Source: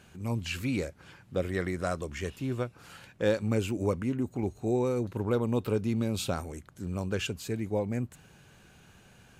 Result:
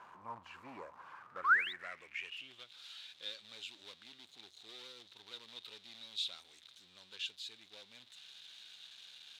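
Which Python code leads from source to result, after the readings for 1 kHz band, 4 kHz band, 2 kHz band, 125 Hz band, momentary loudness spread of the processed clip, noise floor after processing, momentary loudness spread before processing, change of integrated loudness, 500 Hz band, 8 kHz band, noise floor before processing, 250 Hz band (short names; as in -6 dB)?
-1.5 dB, 0.0 dB, +3.0 dB, -38.0 dB, 16 LU, -64 dBFS, 8 LU, -8.0 dB, -27.5 dB, -14.5 dB, -58 dBFS, -32.5 dB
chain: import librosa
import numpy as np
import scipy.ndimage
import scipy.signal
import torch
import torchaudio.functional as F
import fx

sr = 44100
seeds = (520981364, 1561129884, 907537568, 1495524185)

p1 = x + 0.5 * 10.0 ** (-38.5 / 20.0) * np.sign(x)
p2 = fx.spec_paint(p1, sr, seeds[0], shape='rise', start_s=1.44, length_s=0.29, low_hz=1000.0, high_hz=4000.0, level_db=-23.0)
p3 = (np.mod(10.0 ** (23.5 / 20.0) * p2 + 1.0, 2.0) - 1.0) / 10.0 ** (23.5 / 20.0)
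p4 = p2 + F.gain(torch.from_numpy(p3), -11.0).numpy()
p5 = fx.filter_sweep_bandpass(p4, sr, from_hz=1000.0, to_hz=3700.0, start_s=1.03, end_s=2.7, q=6.9)
y = F.gain(torch.from_numpy(p5), 1.0).numpy()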